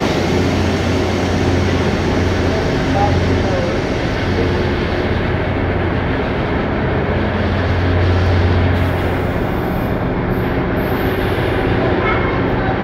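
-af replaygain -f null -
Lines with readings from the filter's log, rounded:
track_gain = +0.7 dB
track_peak = 0.518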